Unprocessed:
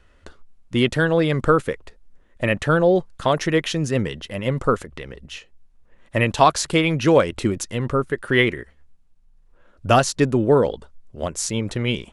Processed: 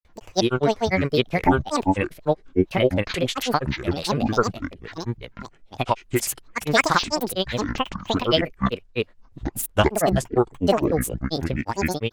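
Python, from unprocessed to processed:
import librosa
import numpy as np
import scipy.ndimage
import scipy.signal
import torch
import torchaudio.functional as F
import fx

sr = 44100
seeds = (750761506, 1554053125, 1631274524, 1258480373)

y = fx.granulator(x, sr, seeds[0], grain_ms=100.0, per_s=20.0, spray_ms=603.0, spread_st=12)
y = fx.formant_shift(y, sr, semitones=3)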